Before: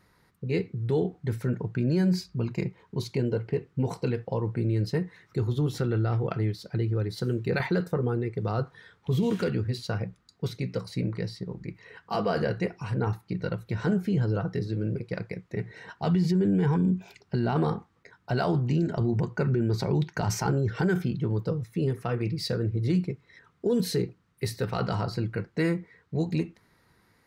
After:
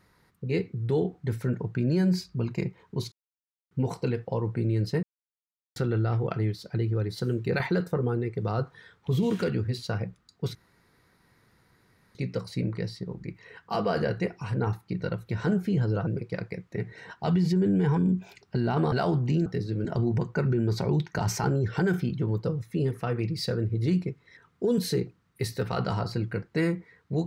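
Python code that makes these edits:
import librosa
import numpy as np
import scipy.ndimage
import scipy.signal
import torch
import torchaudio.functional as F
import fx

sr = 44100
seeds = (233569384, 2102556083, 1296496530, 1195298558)

y = fx.edit(x, sr, fx.silence(start_s=3.12, length_s=0.59),
    fx.silence(start_s=5.03, length_s=0.73),
    fx.insert_room_tone(at_s=10.55, length_s=1.6),
    fx.move(start_s=14.47, length_s=0.39, to_s=18.87),
    fx.cut(start_s=17.71, length_s=0.62), tone=tone)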